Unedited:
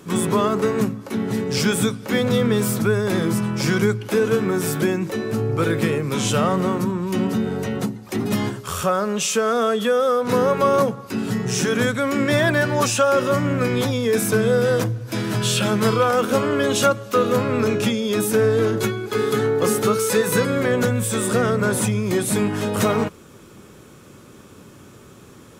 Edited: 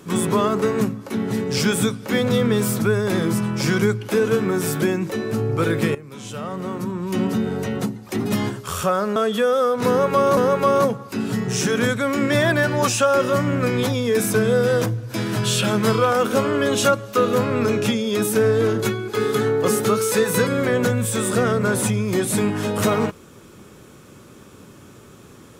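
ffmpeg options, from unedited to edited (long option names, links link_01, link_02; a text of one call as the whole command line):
ffmpeg -i in.wav -filter_complex "[0:a]asplit=4[link_01][link_02][link_03][link_04];[link_01]atrim=end=5.95,asetpts=PTS-STARTPTS,afade=type=out:start_time=5.946:duration=0.004:curve=hsin:silence=0.16788[link_05];[link_02]atrim=start=5.95:end=9.162,asetpts=PTS-STARTPTS,afade=type=in:duration=1.25:curve=qua:silence=0.16788[link_06];[link_03]atrim=start=9.628:end=10.842[link_07];[link_04]atrim=start=10.348[link_08];[link_05][link_06]concat=n=2:v=0:a=1[link_09];[link_09][link_07]acrossfade=duration=0.004:curve1=hsin:curve2=hsin[link_10];[link_10][link_08]acrossfade=duration=0.004:curve1=hsin:curve2=hsin" out.wav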